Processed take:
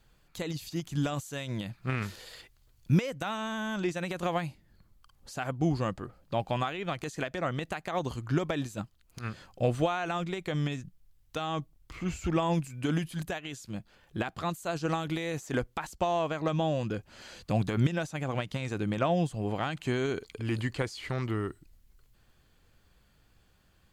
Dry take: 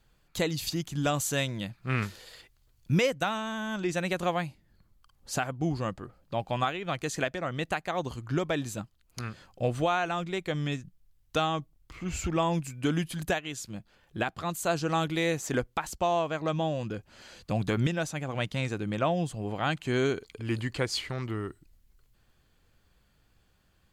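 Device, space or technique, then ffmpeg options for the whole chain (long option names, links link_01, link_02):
de-esser from a sidechain: -filter_complex "[0:a]asplit=2[link_01][link_02];[link_02]highpass=5300,apad=whole_len=1055252[link_03];[link_01][link_03]sidechaincompress=threshold=-48dB:ratio=4:attack=1.2:release=65,volume=2dB"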